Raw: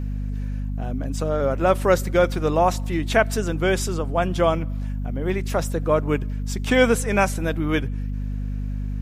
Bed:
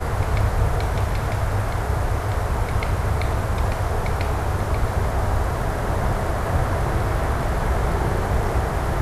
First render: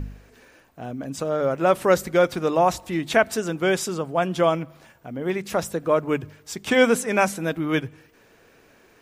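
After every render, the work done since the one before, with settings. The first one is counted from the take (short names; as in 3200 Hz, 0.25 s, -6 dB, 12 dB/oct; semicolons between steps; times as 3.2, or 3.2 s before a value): de-hum 50 Hz, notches 5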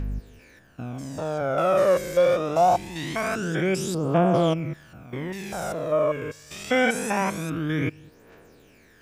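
stepped spectrum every 0.2 s; phaser 0.24 Hz, delay 1.9 ms, feedback 60%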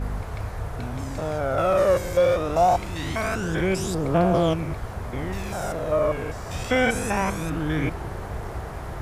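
add bed -11 dB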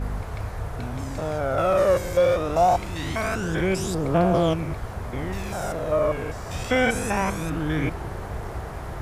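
nothing audible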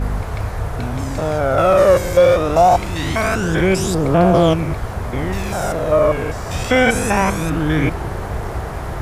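gain +8 dB; limiter -3 dBFS, peak gain reduction 3 dB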